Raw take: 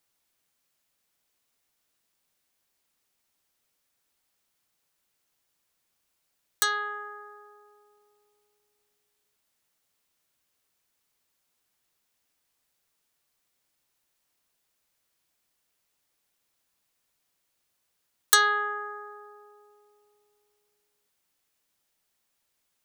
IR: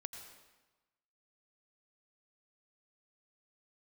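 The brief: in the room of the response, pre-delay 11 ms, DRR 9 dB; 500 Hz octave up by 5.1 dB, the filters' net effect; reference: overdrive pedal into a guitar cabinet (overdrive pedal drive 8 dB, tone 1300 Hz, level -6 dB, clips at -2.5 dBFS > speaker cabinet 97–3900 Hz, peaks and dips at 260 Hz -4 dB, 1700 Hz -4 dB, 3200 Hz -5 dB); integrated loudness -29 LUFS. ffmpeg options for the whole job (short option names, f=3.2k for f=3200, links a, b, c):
-filter_complex "[0:a]equalizer=f=500:t=o:g=7,asplit=2[a][b];[1:a]atrim=start_sample=2205,adelay=11[c];[b][c]afir=irnorm=-1:irlink=0,volume=-6dB[d];[a][d]amix=inputs=2:normalize=0,asplit=2[e][f];[f]highpass=f=720:p=1,volume=8dB,asoftclip=type=tanh:threshold=-2.5dB[g];[e][g]amix=inputs=2:normalize=0,lowpass=f=1.3k:p=1,volume=-6dB,highpass=97,equalizer=f=260:t=q:w=4:g=-4,equalizer=f=1.7k:t=q:w=4:g=-4,equalizer=f=3.2k:t=q:w=4:g=-5,lowpass=f=3.9k:w=0.5412,lowpass=f=3.9k:w=1.3066"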